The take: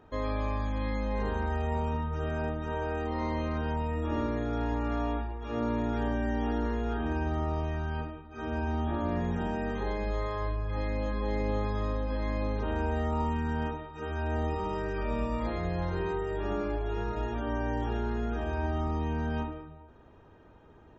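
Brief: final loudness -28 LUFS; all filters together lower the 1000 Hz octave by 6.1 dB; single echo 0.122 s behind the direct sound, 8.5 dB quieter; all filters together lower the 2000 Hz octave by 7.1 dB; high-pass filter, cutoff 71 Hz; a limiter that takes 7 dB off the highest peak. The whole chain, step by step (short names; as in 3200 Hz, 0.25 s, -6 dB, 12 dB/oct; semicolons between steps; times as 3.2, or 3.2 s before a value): HPF 71 Hz; bell 1000 Hz -6 dB; bell 2000 Hz -7 dB; limiter -28 dBFS; echo 0.122 s -8.5 dB; gain +9 dB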